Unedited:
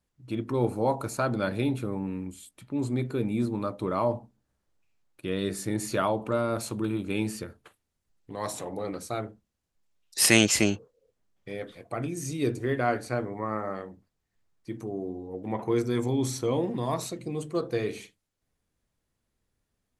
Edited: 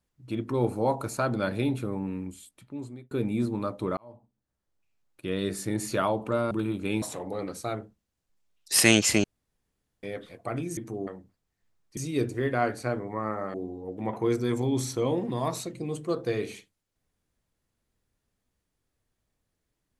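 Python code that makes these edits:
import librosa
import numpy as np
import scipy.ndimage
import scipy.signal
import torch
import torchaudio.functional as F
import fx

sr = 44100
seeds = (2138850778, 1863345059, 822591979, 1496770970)

y = fx.edit(x, sr, fx.fade_out_span(start_s=2.3, length_s=0.81),
    fx.fade_in_span(start_s=3.97, length_s=1.35),
    fx.cut(start_s=6.51, length_s=0.25),
    fx.cut(start_s=7.27, length_s=1.21),
    fx.room_tone_fill(start_s=10.7, length_s=0.79),
    fx.swap(start_s=12.23, length_s=1.57, other_s=14.7, other_length_s=0.3), tone=tone)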